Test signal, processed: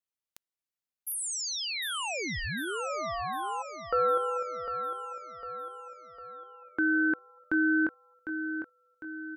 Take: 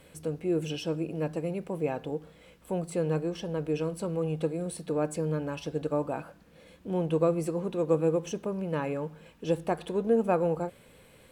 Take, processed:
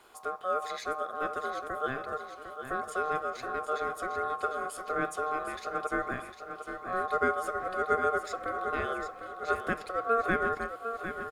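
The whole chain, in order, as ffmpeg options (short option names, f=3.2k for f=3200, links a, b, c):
-af "aeval=exprs='val(0)*sin(2*PI*920*n/s)':c=same,aecho=1:1:753|1506|2259|3012|3765|4518:0.355|0.181|0.0923|0.0471|0.024|0.0122"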